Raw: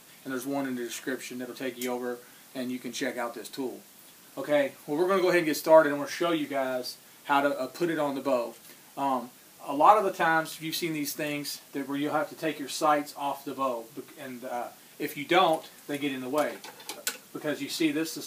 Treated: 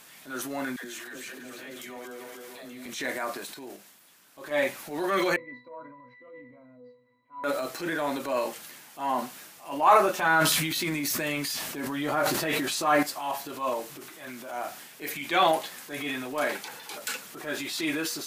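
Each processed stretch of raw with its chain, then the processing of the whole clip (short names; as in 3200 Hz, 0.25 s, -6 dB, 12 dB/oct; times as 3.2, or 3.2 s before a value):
0.76–2.86 regenerating reverse delay 0.148 s, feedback 66%, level -9.5 dB + compressor 3:1, threshold -39 dBFS + dispersion lows, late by 94 ms, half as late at 500 Hz
3.54–4.51 gate -42 dBFS, range -8 dB + compressor 1.5:1, threshold -45 dBFS
5.36–7.44 LPF 2600 Hz + octave resonator B, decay 0.39 s
10.22–13.03 low shelf 180 Hz +8.5 dB + sustainer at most 32 dB/s
whole clip: EQ curve 360 Hz 0 dB, 1700 Hz +8 dB, 3900 Hz +5 dB; transient shaper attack -7 dB, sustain +6 dB; gain -3 dB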